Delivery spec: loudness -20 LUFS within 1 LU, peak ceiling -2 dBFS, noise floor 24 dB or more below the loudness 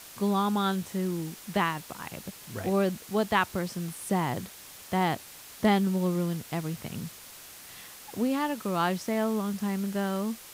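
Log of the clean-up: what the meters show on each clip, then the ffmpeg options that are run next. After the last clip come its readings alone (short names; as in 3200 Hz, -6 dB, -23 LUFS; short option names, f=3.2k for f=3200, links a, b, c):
noise floor -48 dBFS; noise floor target -54 dBFS; loudness -29.5 LUFS; peak -10.5 dBFS; loudness target -20.0 LUFS
-> -af "afftdn=nr=6:nf=-48"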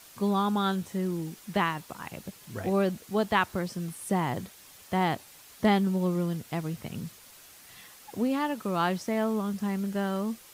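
noise floor -52 dBFS; noise floor target -54 dBFS
-> -af "afftdn=nr=6:nf=-52"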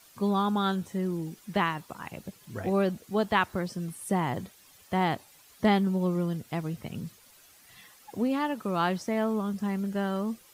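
noise floor -57 dBFS; loudness -29.5 LUFS; peak -10.5 dBFS; loudness target -20.0 LUFS
-> -af "volume=9.5dB,alimiter=limit=-2dB:level=0:latency=1"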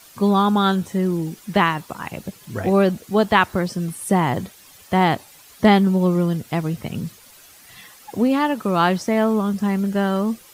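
loudness -20.0 LUFS; peak -2.0 dBFS; noise floor -48 dBFS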